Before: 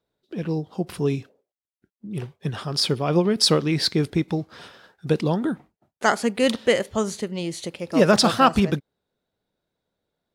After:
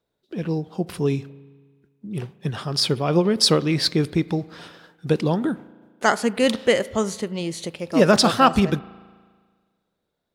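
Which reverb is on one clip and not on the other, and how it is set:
spring reverb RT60 1.6 s, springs 36 ms, chirp 55 ms, DRR 19.5 dB
level +1 dB

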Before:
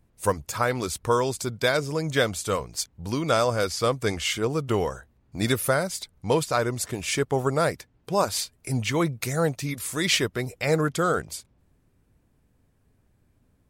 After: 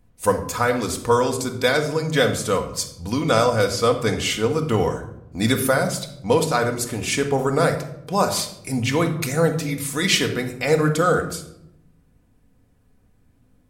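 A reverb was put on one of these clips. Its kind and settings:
rectangular room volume 2,000 cubic metres, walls furnished, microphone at 1.9 metres
level +2.5 dB

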